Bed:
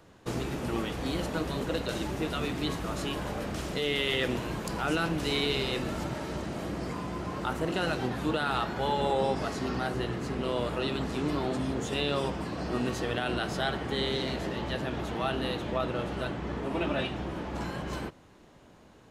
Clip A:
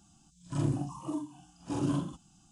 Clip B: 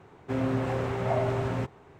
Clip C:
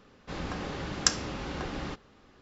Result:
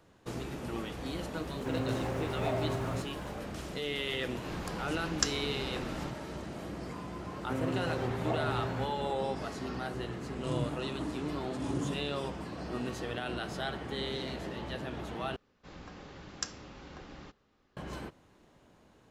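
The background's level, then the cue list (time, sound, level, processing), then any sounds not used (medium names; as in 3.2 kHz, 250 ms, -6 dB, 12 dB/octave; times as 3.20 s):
bed -6 dB
1.36 s: add B -6 dB + word length cut 10-bit, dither none
4.16 s: add C -5.5 dB
7.20 s: add B -6.5 dB
9.92 s: add A -5 dB
15.36 s: replace with C -12.5 dB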